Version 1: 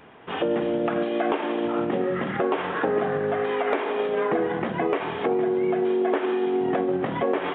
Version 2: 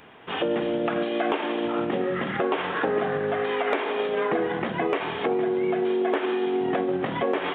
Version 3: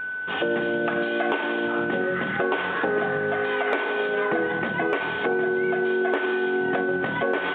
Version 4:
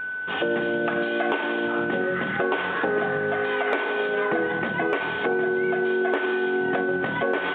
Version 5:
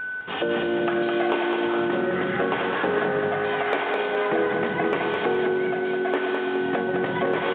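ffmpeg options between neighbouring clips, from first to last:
-af "highshelf=f=2600:g=9,volume=0.841"
-af "aeval=exprs='val(0)+0.0398*sin(2*PI*1500*n/s)':c=same"
-af anull
-af "aecho=1:1:209|418|627|836|1045:0.631|0.271|0.117|0.0502|0.0216"

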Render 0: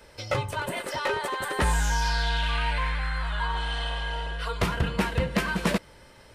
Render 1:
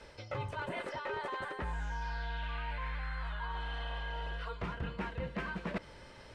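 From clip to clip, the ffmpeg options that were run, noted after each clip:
-filter_complex "[0:a]acrossover=split=2700[s0][s1];[s1]acompressor=threshold=0.00447:ratio=4:attack=1:release=60[s2];[s0][s2]amix=inputs=2:normalize=0,lowpass=6400,areverse,acompressor=threshold=0.0178:ratio=6,areverse,volume=0.891"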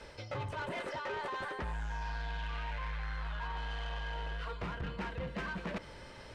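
-af "asoftclip=type=tanh:threshold=0.015,volume=1.41"

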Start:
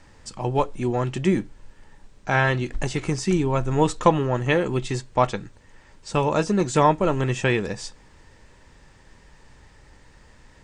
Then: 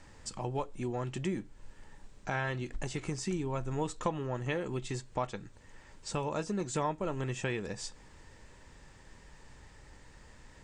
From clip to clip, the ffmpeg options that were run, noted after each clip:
-af "acompressor=threshold=0.0178:ratio=2,equalizer=f=7500:w=3.3:g=3.5,volume=0.668"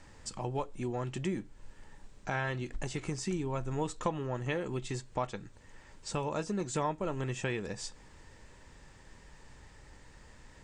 -af anull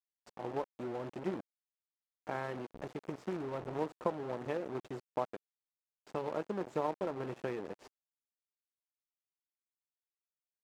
-af "acrusher=bits=5:mix=0:aa=0.000001,aeval=exprs='0.133*(cos(1*acos(clip(val(0)/0.133,-1,1)))-cos(1*PI/2))+0.0119*(cos(7*acos(clip(val(0)/0.133,-1,1)))-cos(7*PI/2))':c=same,bandpass=f=470:t=q:w=0.84:csg=0,volume=1.19"

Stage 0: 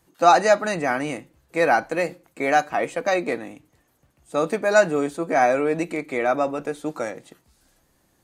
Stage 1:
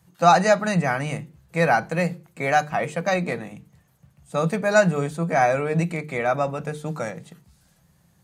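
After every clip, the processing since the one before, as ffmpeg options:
-af "highpass=68,lowshelf=f=220:t=q:w=3:g=8,bandreject=f=50:t=h:w=6,bandreject=f=100:t=h:w=6,bandreject=f=150:t=h:w=6,bandreject=f=200:t=h:w=6,bandreject=f=250:t=h:w=6,bandreject=f=300:t=h:w=6,bandreject=f=350:t=h:w=6,bandreject=f=400:t=h:w=6,bandreject=f=450:t=h:w=6"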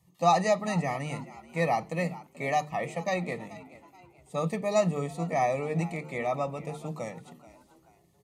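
-filter_complex "[0:a]asuperstop=centerf=1500:order=20:qfactor=3.6,asplit=4[s0][s1][s2][s3];[s1]adelay=432,afreqshift=84,volume=0.126[s4];[s2]adelay=864,afreqshift=168,volume=0.049[s5];[s3]adelay=1296,afreqshift=252,volume=0.0191[s6];[s0][s4][s5][s6]amix=inputs=4:normalize=0,volume=0.447"

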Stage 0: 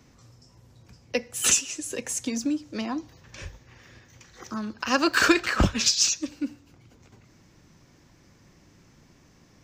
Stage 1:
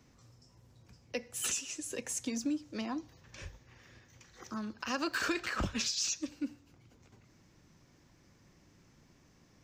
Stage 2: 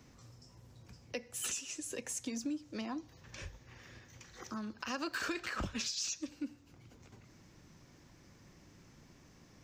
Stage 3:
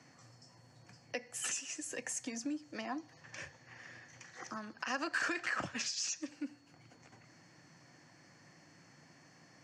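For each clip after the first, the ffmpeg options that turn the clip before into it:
-af "alimiter=limit=0.15:level=0:latency=1:release=100,volume=0.447"
-af "acompressor=threshold=0.00251:ratio=1.5,volume=1.5"
-af "highpass=f=130:w=0.5412,highpass=f=130:w=1.3066,equalizer=f=210:t=q:w=4:g=-8,equalizer=f=400:t=q:w=4:g=-7,equalizer=f=730:t=q:w=4:g=5,equalizer=f=1800:t=q:w=4:g=7,equalizer=f=3800:t=q:w=4:g=-8,lowpass=f=9900:w=0.5412,lowpass=f=9900:w=1.3066,aeval=exprs='val(0)+0.000224*sin(2*PI*4400*n/s)':c=same,volume=1.12"

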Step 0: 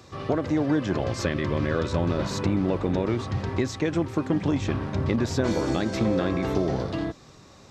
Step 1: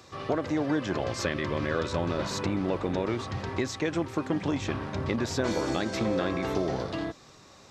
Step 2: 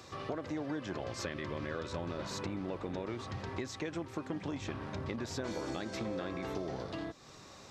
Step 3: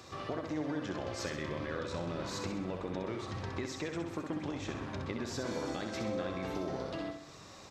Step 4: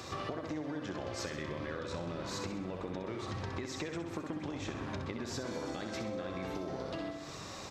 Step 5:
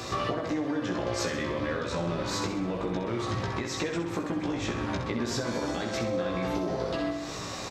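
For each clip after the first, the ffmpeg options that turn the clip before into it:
-af "lowshelf=f=350:g=-7.5"
-af "acompressor=threshold=0.00708:ratio=2"
-af "aecho=1:1:65|130|195|260|325|390:0.501|0.256|0.13|0.0665|0.0339|0.0173"
-af "acompressor=threshold=0.00708:ratio=6,volume=2.24"
-filter_complex "[0:a]asplit=2[s0][s1];[s1]adelay=17,volume=0.668[s2];[s0][s2]amix=inputs=2:normalize=0,volume=2.24"

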